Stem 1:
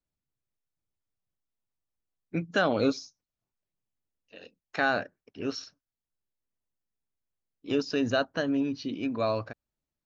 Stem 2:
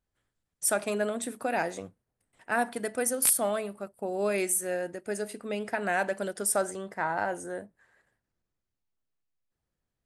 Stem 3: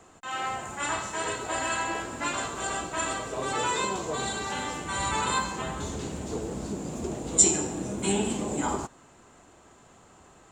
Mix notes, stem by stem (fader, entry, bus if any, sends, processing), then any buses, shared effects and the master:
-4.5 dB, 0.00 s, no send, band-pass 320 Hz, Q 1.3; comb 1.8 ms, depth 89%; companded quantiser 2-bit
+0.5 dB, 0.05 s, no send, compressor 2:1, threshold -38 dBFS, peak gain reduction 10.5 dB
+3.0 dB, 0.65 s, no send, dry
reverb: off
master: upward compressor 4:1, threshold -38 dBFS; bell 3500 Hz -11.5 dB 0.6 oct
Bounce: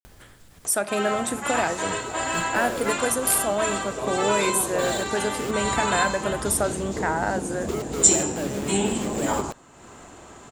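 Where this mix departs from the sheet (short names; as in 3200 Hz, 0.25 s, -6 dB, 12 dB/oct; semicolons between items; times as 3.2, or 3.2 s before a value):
stem 2 +0.5 dB -> +11.0 dB; master: missing bell 3500 Hz -11.5 dB 0.6 oct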